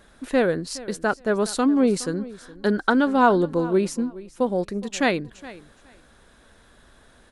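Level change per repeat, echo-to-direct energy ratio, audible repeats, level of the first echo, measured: -14.5 dB, -18.5 dB, 2, -18.5 dB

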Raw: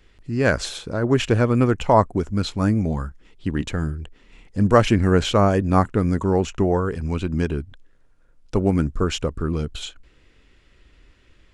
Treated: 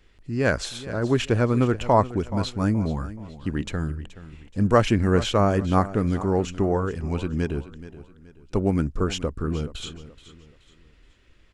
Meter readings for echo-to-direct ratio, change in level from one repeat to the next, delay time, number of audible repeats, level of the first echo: -15.0 dB, -8.5 dB, 426 ms, 3, -15.5 dB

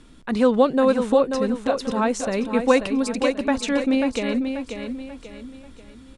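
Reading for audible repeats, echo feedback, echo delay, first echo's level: 4, 38%, 537 ms, -7.0 dB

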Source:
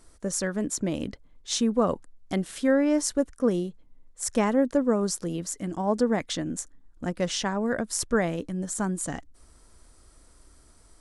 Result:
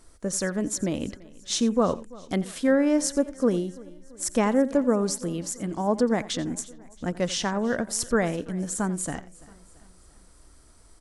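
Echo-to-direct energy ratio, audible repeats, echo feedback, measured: -16.0 dB, 4, no regular repeats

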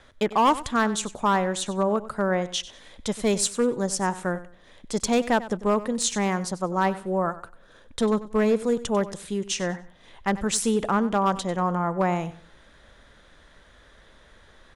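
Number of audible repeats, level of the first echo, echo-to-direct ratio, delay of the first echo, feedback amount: 2, -16.0 dB, -15.5 dB, 95 ms, 26%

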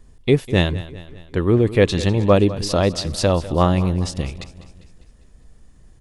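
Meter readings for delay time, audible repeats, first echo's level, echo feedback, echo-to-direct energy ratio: 200 ms, 4, -16.5 dB, 53%, -15.0 dB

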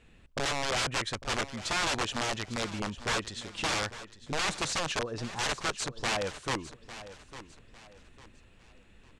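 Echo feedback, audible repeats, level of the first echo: 33%, 3, -14.5 dB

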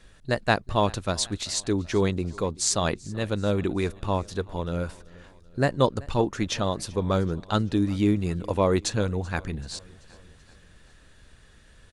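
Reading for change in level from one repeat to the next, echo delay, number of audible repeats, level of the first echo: -5.0 dB, 384 ms, 3, -23.0 dB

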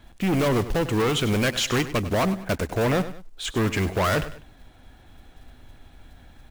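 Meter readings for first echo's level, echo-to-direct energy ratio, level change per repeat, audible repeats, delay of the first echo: -14.0 dB, -13.5 dB, -8.0 dB, 2, 99 ms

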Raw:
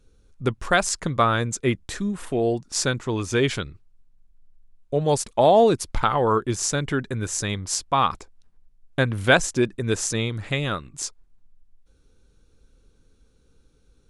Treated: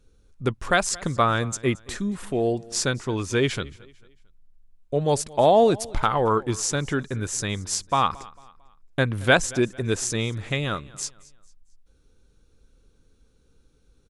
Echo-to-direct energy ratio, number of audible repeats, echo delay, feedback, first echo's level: -21.5 dB, 2, 224 ms, 38%, -22.0 dB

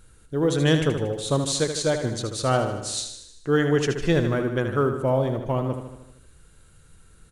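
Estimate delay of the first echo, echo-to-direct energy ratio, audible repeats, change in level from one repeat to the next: 77 ms, -6.0 dB, 6, -4.5 dB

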